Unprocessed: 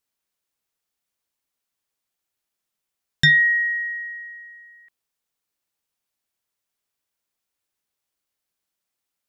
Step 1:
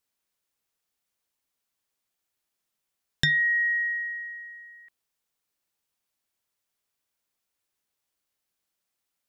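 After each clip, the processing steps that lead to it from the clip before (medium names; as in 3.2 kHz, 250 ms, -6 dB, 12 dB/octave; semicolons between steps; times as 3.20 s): compression 5:1, threshold -22 dBFS, peak gain reduction 9 dB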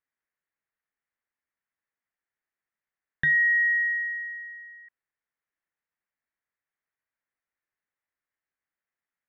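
four-pole ladder low-pass 2.1 kHz, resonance 60%; trim +2.5 dB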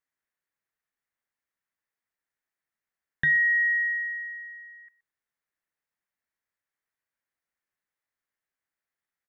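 delay 122 ms -20.5 dB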